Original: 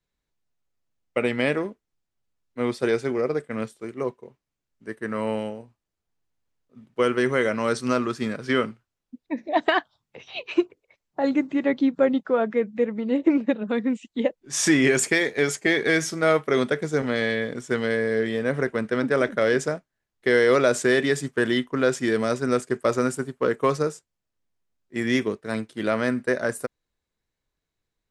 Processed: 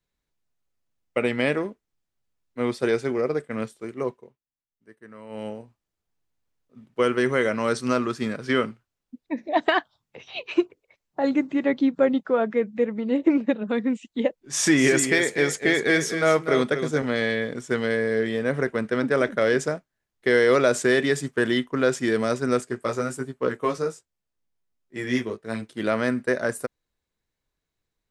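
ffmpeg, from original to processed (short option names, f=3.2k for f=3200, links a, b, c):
-filter_complex "[0:a]asettb=1/sr,asplit=3[a][b][c];[a]atrim=end=14.434[d];[b]atrim=start=14.43:end=17.06,asetpts=PTS-STARTPTS,afade=t=in:d=0.004:c=qsin,afade=t=out:st=2.626:d=0.004:c=qsin,aecho=1:1:245:0.355,atrim=end_sample=115983[e];[c]atrim=start=17.056[f];[d][e]acrossfade=d=0.004:c1=hsin:c2=qsin[g];[g][f]acrossfade=d=0.004:c1=qsin:c2=hsin,asplit=3[h][i][j];[h]afade=t=out:st=22.65:d=0.02[k];[i]flanger=delay=15:depth=3.1:speed=1.2,afade=t=in:st=22.65:d=0.02,afade=t=out:st=25.61:d=0.02[l];[j]afade=t=in:st=25.61:d=0.02[m];[k][l][m]amix=inputs=3:normalize=0,asplit=3[n][o][p];[n]atrim=end=4.37,asetpts=PTS-STARTPTS,afade=t=out:st=4.14:d=0.23:silence=0.158489[q];[o]atrim=start=4.37:end=5.29,asetpts=PTS-STARTPTS,volume=-16dB[r];[p]atrim=start=5.29,asetpts=PTS-STARTPTS,afade=t=in:d=0.23:silence=0.158489[s];[q][r][s]concat=n=3:v=0:a=1"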